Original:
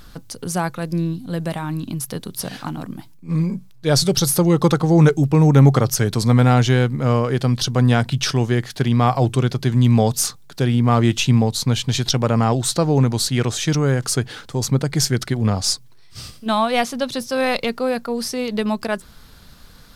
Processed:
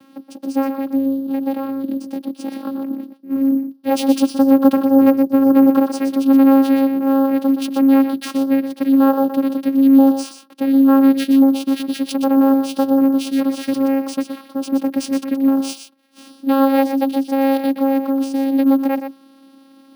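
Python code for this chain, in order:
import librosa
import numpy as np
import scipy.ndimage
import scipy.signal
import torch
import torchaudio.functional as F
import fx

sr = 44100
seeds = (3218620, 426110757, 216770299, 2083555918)

y = fx.vocoder(x, sr, bands=8, carrier='saw', carrier_hz=271.0)
y = y + 10.0 ** (-8.5 / 20.0) * np.pad(y, (int(122 * sr / 1000.0), 0))[:len(y)]
y = np.repeat(scipy.signal.resample_poly(y, 1, 3), 3)[:len(y)]
y = F.gain(torch.from_numpy(y), 1.5).numpy()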